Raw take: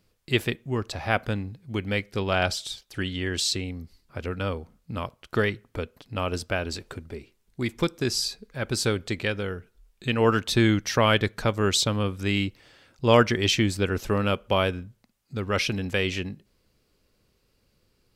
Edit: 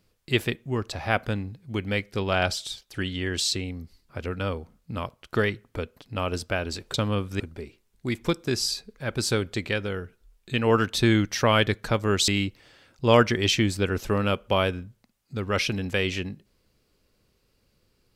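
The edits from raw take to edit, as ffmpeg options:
ffmpeg -i in.wav -filter_complex "[0:a]asplit=4[link_01][link_02][link_03][link_04];[link_01]atrim=end=6.942[link_05];[link_02]atrim=start=11.818:end=12.282[link_06];[link_03]atrim=start=6.938:end=11.822[link_07];[link_04]atrim=start=12.278[link_08];[link_05][link_06]acrossfade=duration=0.004:curve1=hsin:curve2=hsin[link_09];[link_09][link_07]acrossfade=duration=0.004:curve1=hsin:curve2=hsin[link_10];[link_10][link_08]acrossfade=duration=0.004:curve1=hsin:curve2=hsin" out.wav

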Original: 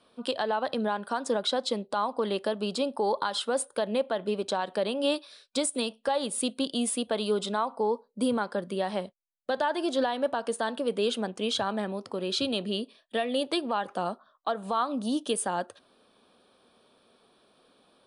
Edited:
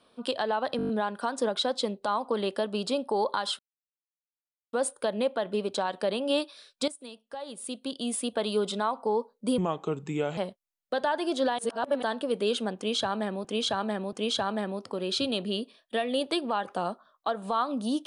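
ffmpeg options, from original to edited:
ffmpeg -i in.wav -filter_complex "[0:a]asplit=15[link_01][link_02][link_03][link_04][link_05][link_06][link_07][link_08][link_09][link_10][link_11][link_12][link_13][link_14][link_15];[link_01]atrim=end=0.792[link_16];[link_02]atrim=start=0.768:end=0.792[link_17];[link_03]atrim=start=0.768:end=0.792[link_18];[link_04]atrim=start=0.768:end=0.792[link_19];[link_05]atrim=start=0.768:end=0.792[link_20];[link_06]atrim=start=0.768:end=0.792[link_21];[link_07]atrim=start=0.768:end=3.47,asetpts=PTS-STARTPTS,afade=type=out:start_time=2.698:duration=0.004:curve=hsin,apad=pad_dur=1.14[link_22];[link_08]atrim=start=3.47:end=5.62,asetpts=PTS-STARTPTS,afade=type=in:duration=0.004:curve=hsin,afade=type=out:start_time=2.146:duration=0.004:curve=hsin:silence=0.177828[link_23];[link_09]atrim=start=5.62:end=8.324,asetpts=PTS-STARTPTS,afade=type=in:duration=1.49:curve=qua:silence=0.177828[link_24];[link_10]atrim=start=8.32:end=8.94,asetpts=PTS-STARTPTS,asetrate=34398,aresample=44100[link_25];[link_11]atrim=start=8.936:end=10.152[link_26];[link_12]atrim=start=10.148:end=10.592,asetpts=PTS-STARTPTS,areverse[link_27];[link_13]atrim=start=10.588:end=12.012[link_28];[link_14]atrim=start=11.328:end=12.012[link_29];[link_15]atrim=start=11.328[link_30];[link_16][link_17]acrossfade=duration=0.004:curve1=hsin:curve2=hsin[link_31];[link_31][link_18]acrossfade=duration=0.004:curve1=hsin:curve2=hsin[link_32];[link_32][link_19]acrossfade=duration=0.004:curve1=hsin:curve2=hsin[link_33];[link_33][link_20]acrossfade=duration=0.004:curve1=hsin:curve2=hsin[link_34];[link_34][link_21]acrossfade=duration=0.004:curve1=hsin:curve2=hsin[link_35];[link_22][link_23][link_24]concat=n=3:v=0:a=1[link_36];[link_35][link_36]acrossfade=duration=0.004:curve1=hsin:curve2=hsin[link_37];[link_37][link_25]acrossfade=duration=0.004:curve1=hsin:curve2=hsin[link_38];[link_38][link_26]acrossfade=duration=0.004:curve1=hsin:curve2=hsin[link_39];[link_39][link_27]acrossfade=duration=0.004:curve1=hsin:curve2=hsin[link_40];[link_40][link_28]acrossfade=duration=0.004:curve1=hsin:curve2=hsin[link_41];[link_41][link_29]acrossfade=duration=0.004:curve1=hsin:curve2=hsin[link_42];[link_42][link_30]acrossfade=duration=0.004:curve1=hsin:curve2=hsin" out.wav

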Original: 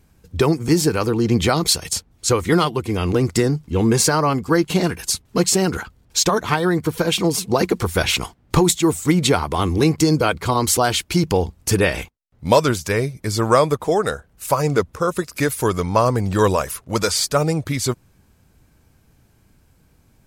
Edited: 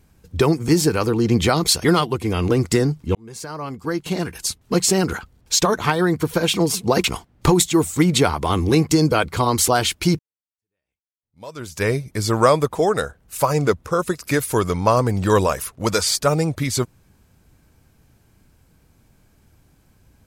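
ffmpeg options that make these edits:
ffmpeg -i in.wav -filter_complex "[0:a]asplit=5[link_01][link_02][link_03][link_04][link_05];[link_01]atrim=end=1.842[link_06];[link_02]atrim=start=2.478:end=3.79,asetpts=PTS-STARTPTS,afade=type=out:start_time=1.308:duration=0.004:curve=hsin[link_07];[link_03]atrim=start=3.79:end=7.682,asetpts=PTS-STARTPTS,afade=type=in:duration=1.82[link_08];[link_04]atrim=start=8.128:end=11.28,asetpts=PTS-STARTPTS,afade=type=out:start_time=3.148:duration=0.004:curve=hsin[link_09];[link_05]atrim=start=11.28,asetpts=PTS-STARTPTS,afade=type=in:duration=1.65:curve=exp[link_10];[link_07][link_08]concat=n=2:v=0:a=1[link_11];[link_06][link_11]acrossfade=duration=0.004:curve1=hsin:curve2=hsin[link_12];[link_09][link_10]concat=n=2:v=0:a=1[link_13];[link_12][link_13]acrossfade=duration=0.004:curve1=hsin:curve2=hsin" out.wav

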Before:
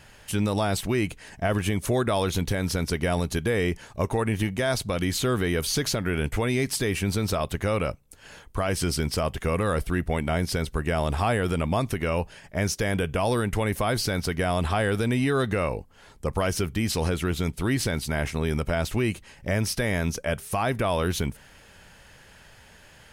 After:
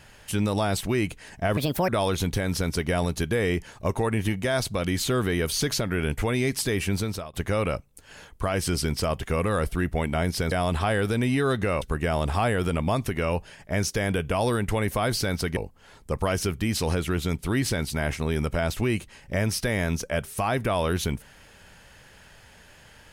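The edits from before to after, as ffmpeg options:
ffmpeg -i in.wav -filter_complex "[0:a]asplit=7[link_01][link_02][link_03][link_04][link_05][link_06][link_07];[link_01]atrim=end=1.574[link_08];[link_02]atrim=start=1.57:end=2.03,asetpts=PTS-STARTPTS,asetrate=64386,aresample=44100[link_09];[link_03]atrim=start=2.026:end=7.48,asetpts=PTS-STARTPTS,afade=type=out:start_time=5.074:duration=0.38:silence=0.0707946[link_10];[link_04]atrim=start=7.48:end=10.662,asetpts=PTS-STARTPTS,afade=type=in:duration=0.004:curve=hsin:silence=0.0707946[link_11];[link_05]atrim=start=14.408:end=15.712[link_12];[link_06]atrim=start=10.658:end=14.412[link_13];[link_07]atrim=start=15.708[link_14];[link_08][link_09]acrossfade=duration=0.004:curve1=hsin:curve2=hsin[link_15];[link_10][link_11]concat=n=2:v=0:a=1[link_16];[link_15][link_16]acrossfade=duration=0.004:curve1=hsin:curve2=hsin[link_17];[link_17][link_12]acrossfade=duration=0.004:curve1=hsin:curve2=hsin[link_18];[link_18][link_13]acrossfade=duration=0.004:curve1=hsin:curve2=hsin[link_19];[link_19][link_14]acrossfade=duration=0.004:curve1=hsin:curve2=hsin" out.wav

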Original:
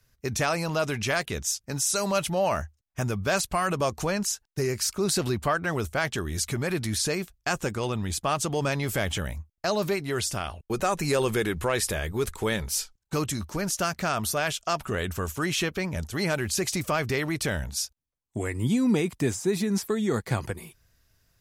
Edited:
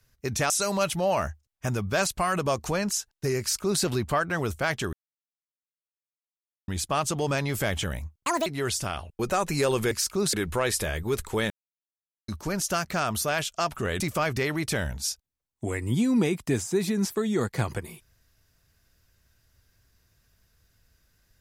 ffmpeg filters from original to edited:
ffmpeg -i in.wav -filter_complex "[0:a]asplit=11[link_01][link_02][link_03][link_04][link_05][link_06][link_07][link_08][link_09][link_10][link_11];[link_01]atrim=end=0.502[link_12];[link_02]atrim=start=1.838:end=6.27,asetpts=PTS-STARTPTS,afade=type=out:start_time=4.428:duration=0.004:curve=hsin[link_13];[link_03]atrim=start=6.27:end=8.02,asetpts=PTS-STARTPTS,volume=0[link_14];[link_04]atrim=start=8.02:end=9.544,asetpts=PTS-STARTPTS,afade=type=in:duration=0.004:curve=hsin[link_15];[link_05]atrim=start=9.54:end=9.97,asetpts=PTS-STARTPTS,asetrate=72324,aresample=44100[link_16];[link_06]atrim=start=9.966:end=11.422[link_17];[link_07]atrim=start=4.738:end=5.162[link_18];[link_08]atrim=start=11.418:end=12.59,asetpts=PTS-STARTPTS,afade=type=out:start_time=1.168:duration=0.004:curve=hsin[link_19];[link_09]atrim=start=12.59:end=13.37,asetpts=PTS-STARTPTS,volume=0[link_20];[link_10]atrim=start=13.37:end=15.092,asetpts=PTS-STARTPTS,afade=type=in:duration=0.004:curve=hsin[link_21];[link_11]atrim=start=16.728[link_22];[link_13][link_14][link_15]concat=n=3:v=0:a=1[link_23];[link_12][link_23]acrossfade=duration=0.004:curve1=hsin:curve2=hsin[link_24];[link_24][link_16]acrossfade=duration=0.004:curve1=hsin:curve2=hsin[link_25];[link_25][link_17]acrossfade=duration=0.004:curve1=hsin:curve2=hsin[link_26];[link_26][link_18]acrossfade=duration=0.004:curve1=hsin:curve2=hsin[link_27];[link_19][link_20][link_21]concat=n=3:v=0:a=1[link_28];[link_27][link_28]acrossfade=duration=0.004:curve1=hsin:curve2=hsin[link_29];[link_29][link_22]acrossfade=duration=0.004:curve1=hsin:curve2=hsin" out.wav

